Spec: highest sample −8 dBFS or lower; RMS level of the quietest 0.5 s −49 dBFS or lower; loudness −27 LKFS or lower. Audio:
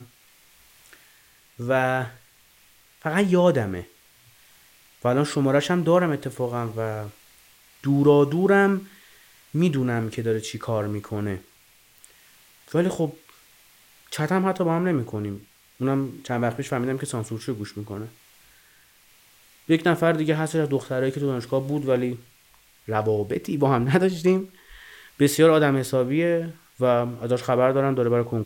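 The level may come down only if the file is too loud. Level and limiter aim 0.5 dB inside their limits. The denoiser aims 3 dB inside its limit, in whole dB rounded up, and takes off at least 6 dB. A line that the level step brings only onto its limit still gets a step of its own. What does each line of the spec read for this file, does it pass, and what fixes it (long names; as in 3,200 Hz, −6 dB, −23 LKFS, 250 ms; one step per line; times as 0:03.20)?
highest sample −5.5 dBFS: out of spec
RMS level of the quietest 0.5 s −57 dBFS: in spec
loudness −23.5 LKFS: out of spec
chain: level −4 dB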